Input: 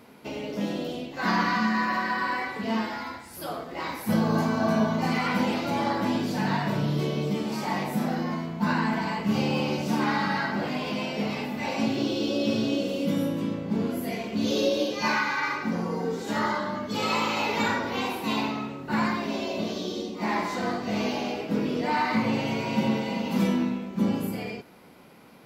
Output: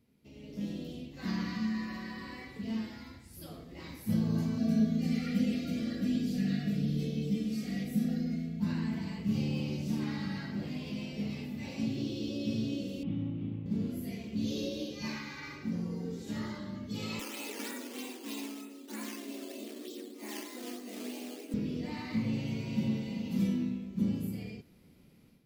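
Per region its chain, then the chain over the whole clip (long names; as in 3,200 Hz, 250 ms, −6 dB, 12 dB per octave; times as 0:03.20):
0:04.58–0:08.60: Butterworth band-reject 960 Hz, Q 1.7 + comb filter 4.2 ms, depth 72%
0:13.03–0:13.66: lower of the sound and its delayed copy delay 0.32 ms + loudspeaker in its box 110–2,800 Hz, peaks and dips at 110 Hz +7 dB, 200 Hz −5 dB, 520 Hz −9 dB, 1,700 Hz −9 dB + notch filter 980 Hz, Q 25
0:17.19–0:21.54: sample-and-hold swept by an LFO 8× 3.2 Hz + linear-phase brick-wall high-pass 230 Hz
whole clip: guitar amp tone stack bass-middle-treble 10-0-1; notch filter 1,500 Hz, Q 19; automatic gain control gain up to 11 dB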